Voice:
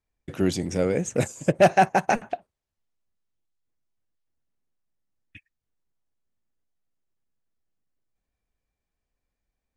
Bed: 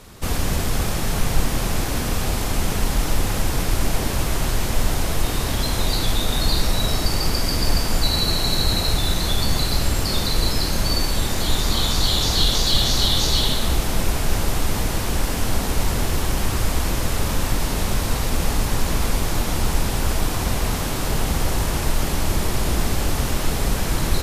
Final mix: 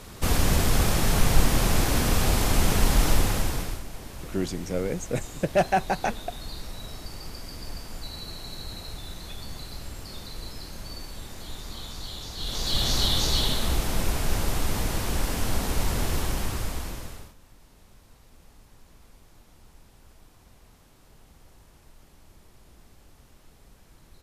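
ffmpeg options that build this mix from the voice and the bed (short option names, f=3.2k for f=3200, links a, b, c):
-filter_complex "[0:a]adelay=3950,volume=-5dB[a];[1:a]volume=13dB,afade=t=out:st=3.09:d=0.74:silence=0.125893,afade=t=in:st=12.37:d=0.55:silence=0.223872,afade=t=out:st=16.17:d=1.17:silence=0.0398107[b];[a][b]amix=inputs=2:normalize=0"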